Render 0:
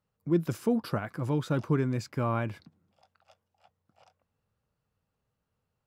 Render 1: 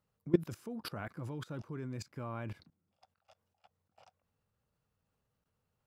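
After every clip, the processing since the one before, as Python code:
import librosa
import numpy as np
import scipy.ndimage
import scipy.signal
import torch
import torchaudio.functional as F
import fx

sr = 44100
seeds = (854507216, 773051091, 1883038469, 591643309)

y = fx.level_steps(x, sr, step_db=21)
y = F.gain(torch.from_numpy(y), 1.5).numpy()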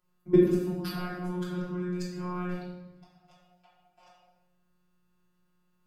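y = fx.robotise(x, sr, hz=179.0)
y = fx.room_shoebox(y, sr, seeds[0], volume_m3=580.0, walls='mixed', distance_m=3.0)
y = F.gain(torch.from_numpy(y), 1.5).numpy()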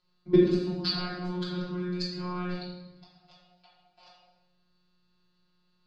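y = fx.lowpass_res(x, sr, hz=4300.0, q=8.7)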